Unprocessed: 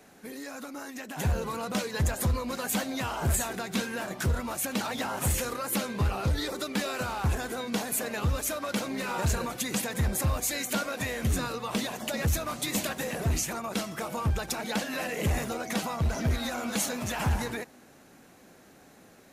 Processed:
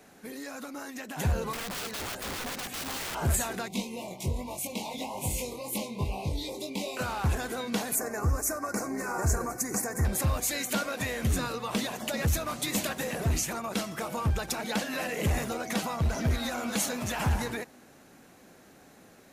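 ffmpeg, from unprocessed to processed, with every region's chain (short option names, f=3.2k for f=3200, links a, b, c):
-filter_complex "[0:a]asettb=1/sr,asplit=3[a][b][c];[a]atrim=end=1.534[d];[b]atrim=start=1.53:end=3.15,asetpts=PTS-STARTPTS,afade=t=in:d=0.004:c=qsin,afade=t=out:st=1.616:d=0.004:c=qsin,acrossover=split=3800[e][f];[f]acompressor=threshold=-49dB:ratio=4:attack=1:release=60[g];[e][g]amix=inputs=2:normalize=0,aeval=exprs='(mod(35.5*val(0)+1,2)-1)/35.5':c=same[h];[c]atrim=start=3.146[i];[d][h]acrossfade=d=0.004:c1=hsin:c2=qsin[j];[j][i]acrossfade=d=0.004:c1=qsin:c2=hsin,asettb=1/sr,asplit=3[k][l][m];[k]atrim=end=3.684[n];[l]atrim=start=3.68:end=6.97,asetpts=PTS-STARTPTS,afade=t=in:d=0.004:c=qsin,afade=t=out:st=3.286:d=0.004:c=qsin,flanger=delay=19.5:depth=3.5:speed=1.2,asuperstop=centerf=1500:order=12:qfactor=1.5[o];[m]atrim=start=6.966[p];[n][o]acrossfade=d=0.004:c1=hsin:c2=qsin[q];[q][p]acrossfade=d=0.004:c1=qsin:c2=hsin,asettb=1/sr,asplit=3[r][s][t];[r]atrim=end=7.954[u];[s]atrim=start=7.95:end=10.05,asetpts=PTS-STARTPTS,afade=t=in:d=0.004:c=qsin,afade=t=out:st=2.096:d=0.004:c=qsin,asuperstop=centerf=3300:order=4:qfactor=0.82,equalizer=f=6.5k:t=o:w=0.79:g=4,aecho=1:1:2.7:0.37,atrim=end_sample=92610[v];[t]atrim=start=10.046[w];[u][v]acrossfade=d=0.004:c1=hsin:c2=qsin[x];[x][w]acrossfade=d=0.004:c1=qsin:c2=hsin"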